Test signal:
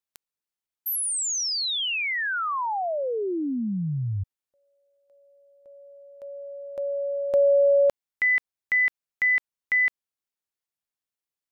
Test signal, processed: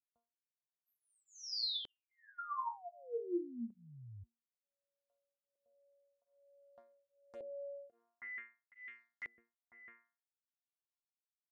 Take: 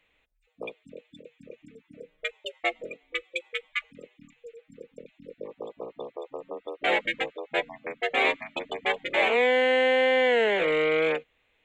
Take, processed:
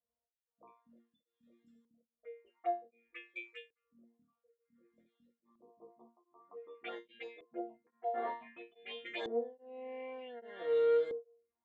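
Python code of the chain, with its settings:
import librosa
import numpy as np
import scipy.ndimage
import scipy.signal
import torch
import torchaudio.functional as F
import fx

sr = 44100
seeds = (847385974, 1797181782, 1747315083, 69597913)

y = scipy.signal.sosfilt(scipy.signal.butter(4, 56.0, 'highpass', fs=sr, output='sos'), x)
y = fx.resonator_bank(y, sr, root=58, chord='fifth', decay_s=0.37)
y = fx.env_phaser(y, sr, low_hz=350.0, high_hz=2500.0, full_db=-40.0)
y = fx.filter_lfo_lowpass(y, sr, shape='saw_up', hz=0.54, low_hz=400.0, high_hz=6000.0, q=1.3)
y = y * np.abs(np.cos(np.pi * 1.2 * np.arange(len(y)) / sr))
y = y * 10.0 ** (6.0 / 20.0)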